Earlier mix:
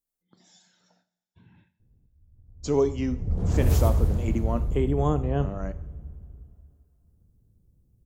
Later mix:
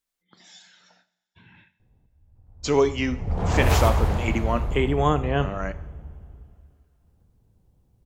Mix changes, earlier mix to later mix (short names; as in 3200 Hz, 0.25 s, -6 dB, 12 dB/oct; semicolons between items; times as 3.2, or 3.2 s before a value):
background: add bell 840 Hz +10 dB 1.1 oct; master: add bell 2300 Hz +15 dB 2.7 oct